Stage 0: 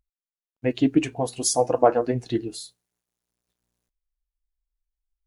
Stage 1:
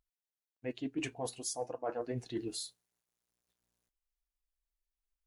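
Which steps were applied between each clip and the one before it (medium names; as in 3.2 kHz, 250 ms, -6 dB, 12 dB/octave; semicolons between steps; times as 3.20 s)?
bass shelf 370 Hz -5 dB; reverse; compression 10:1, threshold -31 dBFS, peak gain reduction 19 dB; reverse; trim -3 dB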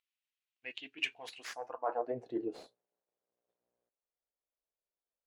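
tracing distortion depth 0.079 ms; band-pass sweep 2.7 kHz -> 530 Hz, 1.24–2.25 s; trim +9.5 dB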